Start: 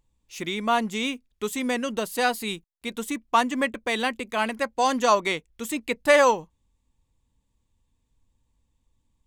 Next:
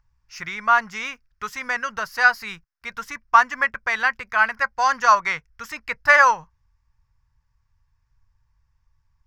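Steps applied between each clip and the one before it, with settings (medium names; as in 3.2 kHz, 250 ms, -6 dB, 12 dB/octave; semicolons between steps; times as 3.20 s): FFT filter 130 Hz 0 dB, 250 Hz -22 dB, 360 Hz -21 dB, 1.5 kHz +9 dB, 3.6 kHz -14 dB, 5.3 kHz +3 dB, 8.3 kHz -22 dB, 14 kHz -12 dB; trim +5 dB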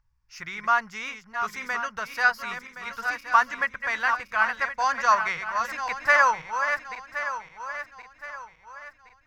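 backward echo that repeats 535 ms, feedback 61%, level -7.5 dB; trim -5 dB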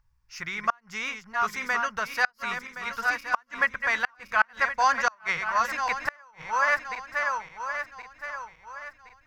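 inverted gate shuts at -12 dBFS, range -36 dB; trim +2.5 dB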